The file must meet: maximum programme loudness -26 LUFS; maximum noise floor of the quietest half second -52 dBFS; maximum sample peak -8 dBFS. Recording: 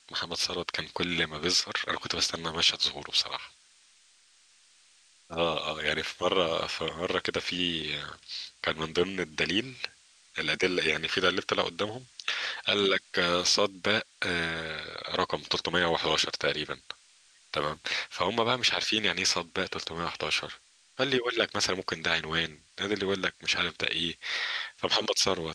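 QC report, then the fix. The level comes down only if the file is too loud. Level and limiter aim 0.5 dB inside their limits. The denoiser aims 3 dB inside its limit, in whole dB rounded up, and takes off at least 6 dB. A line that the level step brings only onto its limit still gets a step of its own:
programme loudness -28.5 LUFS: OK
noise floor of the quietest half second -62 dBFS: OK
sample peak -9.0 dBFS: OK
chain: none

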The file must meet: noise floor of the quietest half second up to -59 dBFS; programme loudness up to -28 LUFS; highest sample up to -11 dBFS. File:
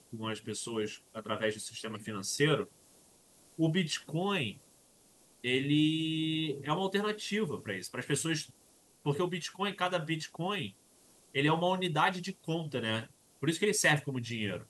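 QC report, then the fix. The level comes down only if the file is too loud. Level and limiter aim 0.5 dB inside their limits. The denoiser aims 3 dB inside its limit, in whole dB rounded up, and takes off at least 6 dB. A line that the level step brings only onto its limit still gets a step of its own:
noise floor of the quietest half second -64 dBFS: OK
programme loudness -33.0 LUFS: OK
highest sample -13.0 dBFS: OK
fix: none

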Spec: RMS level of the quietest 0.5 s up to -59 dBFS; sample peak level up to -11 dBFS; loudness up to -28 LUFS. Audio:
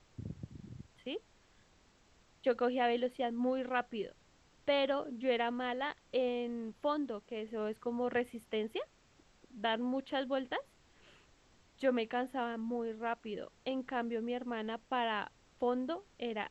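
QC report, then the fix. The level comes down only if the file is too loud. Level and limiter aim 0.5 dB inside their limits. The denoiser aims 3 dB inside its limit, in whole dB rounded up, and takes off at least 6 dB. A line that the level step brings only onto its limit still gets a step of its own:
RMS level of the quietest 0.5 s -67 dBFS: OK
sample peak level -18.5 dBFS: OK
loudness -37.0 LUFS: OK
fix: none

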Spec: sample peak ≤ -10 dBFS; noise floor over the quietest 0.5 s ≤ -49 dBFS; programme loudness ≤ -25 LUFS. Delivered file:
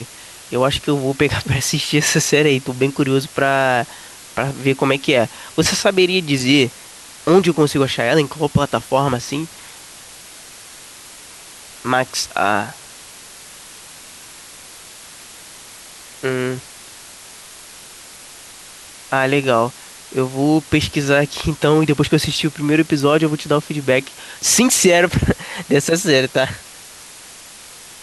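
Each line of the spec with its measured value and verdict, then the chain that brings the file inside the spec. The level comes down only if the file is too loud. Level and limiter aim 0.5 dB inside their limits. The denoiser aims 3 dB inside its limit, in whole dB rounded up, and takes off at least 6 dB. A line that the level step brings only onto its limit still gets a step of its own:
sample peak -2.5 dBFS: fail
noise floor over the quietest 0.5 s -39 dBFS: fail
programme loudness -17.0 LUFS: fail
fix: denoiser 6 dB, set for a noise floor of -39 dBFS; gain -8.5 dB

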